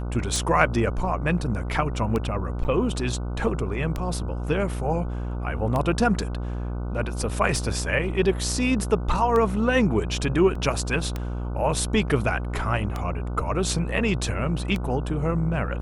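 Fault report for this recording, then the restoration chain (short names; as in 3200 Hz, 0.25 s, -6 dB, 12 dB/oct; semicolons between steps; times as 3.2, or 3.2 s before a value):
buzz 60 Hz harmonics 25 -29 dBFS
tick 33 1/3 rpm
2.64–2.65 gap 7.8 ms
10.55 gap 4 ms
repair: de-click; de-hum 60 Hz, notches 25; interpolate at 2.64, 7.8 ms; interpolate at 10.55, 4 ms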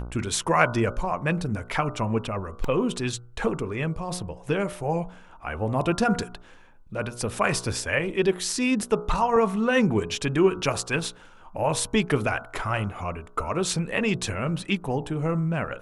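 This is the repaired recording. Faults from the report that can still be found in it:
none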